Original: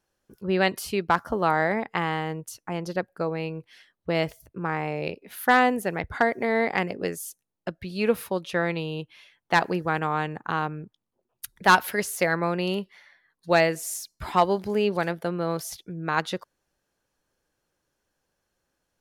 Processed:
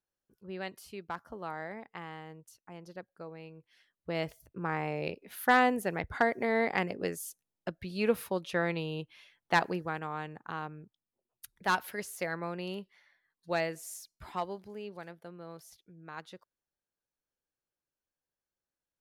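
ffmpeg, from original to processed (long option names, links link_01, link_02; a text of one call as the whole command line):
ffmpeg -i in.wav -af "volume=-5dB,afade=type=in:start_time=3.56:duration=1.18:silence=0.251189,afade=type=out:start_time=9.54:duration=0.45:silence=0.473151,afade=type=out:start_time=14.01:duration=0.73:silence=0.421697" out.wav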